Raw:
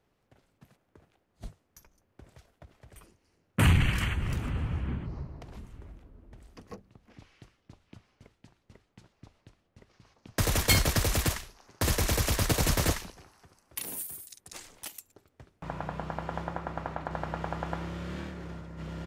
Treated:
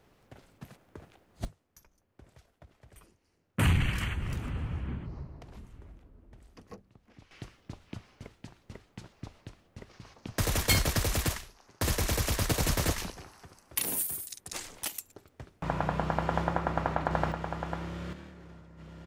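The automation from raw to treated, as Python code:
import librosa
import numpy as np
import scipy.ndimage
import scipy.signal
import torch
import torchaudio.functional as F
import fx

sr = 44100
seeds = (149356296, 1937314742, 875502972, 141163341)

y = fx.gain(x, sr, db=fx.steps((0.0, 10.0), (1.45, -3.0), (7.31, 9.0), (10.38, -2.0), (12.98, 6.0), (17.32, -1.0), (18.13, -9.0)))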